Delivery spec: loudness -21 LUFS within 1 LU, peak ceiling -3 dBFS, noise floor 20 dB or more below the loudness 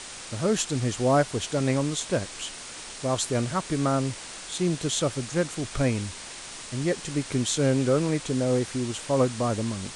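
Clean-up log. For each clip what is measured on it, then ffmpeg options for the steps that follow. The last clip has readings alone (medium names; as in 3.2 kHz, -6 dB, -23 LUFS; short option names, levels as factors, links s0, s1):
noise floor -41 dBFS; noise floor target -47 dBFS; loudness -26.5 LUFS; peak level -11.5 dBFS; loudness target -21.0 LUFS
-> -af "afftdn=nr=6:nf=-41"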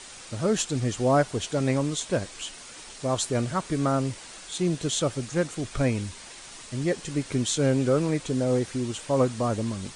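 noise floor -44 dBFS; noise floor target -47 dBFS
-> -af "afftdn=nr=6:nf=-44"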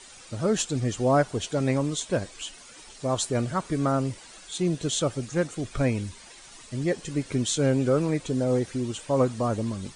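noise floor -48 dBFS; loudness -27.0 LUFS; peak level -11.5 dBFS; loudness target -21.0 LUFS
-> -af "volume=2"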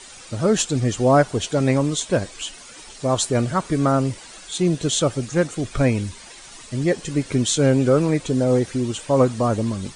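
loudness -20.5 LUFS; peak level -5.5 dBFS; noise floor -42 dBFS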